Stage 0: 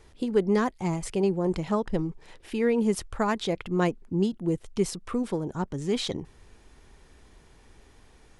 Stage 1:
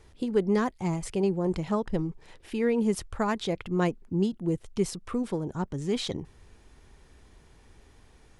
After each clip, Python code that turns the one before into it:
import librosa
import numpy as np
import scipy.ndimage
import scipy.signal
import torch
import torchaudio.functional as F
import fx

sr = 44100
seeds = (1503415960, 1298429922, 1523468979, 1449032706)

y = fx.peak_eq(x, sr, hz=90.0, db=3.5, octaves=1.8)
y = y * 10.0 ** (-2.0 / 20.0)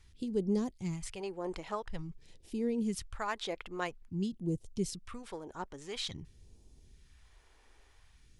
y = fx.phaser_stages(x, sr, stages=2, low_hz=130.0, high_hz=1500.0, hz=0.49, feedback_pct=40)
y = y * 10.0 ** (-5.5 / 20.0)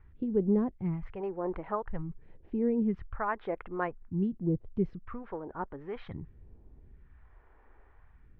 y = scipy.signal.sosfilt(scipy.signal.butter(4, 1700.0, 'lowpass', fs=sr, output='sos'), x)
y = y * 10.0 ** (4.5 / 20.0)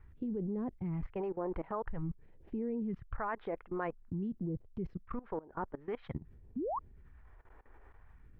y = fx.spec_paint(x, sr, seeds[0], shape='rise', start_s=6.56, length_s=0.23, low_hz=220.0, high_hz=1200.0, level_db=-29.0)
y = fx.level_steps(y, sr, step_db=20)
y = y * 10.0 ** (4.5 / 20.0)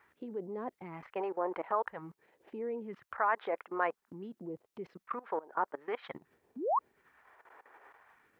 y = scipy.signal.sosfilt(scipy.signal.butter(2, 600.0, 'highpass', fs=sr, output='sos'), x)
y = y * 10.0 ** (8.5 / 20.0)